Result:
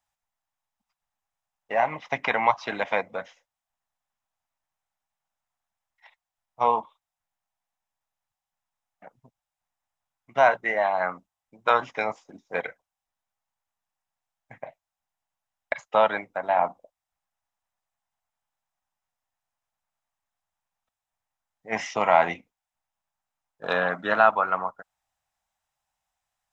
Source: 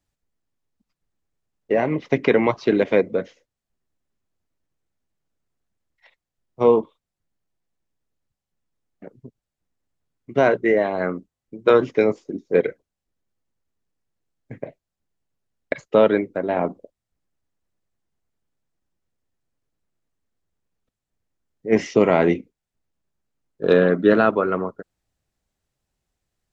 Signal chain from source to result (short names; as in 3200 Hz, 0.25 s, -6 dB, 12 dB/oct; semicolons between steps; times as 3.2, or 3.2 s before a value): resonant low shelf 560 Hz -12.5 dB, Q 3; notch 4400 Hz, Q 9.7; gain -1 dB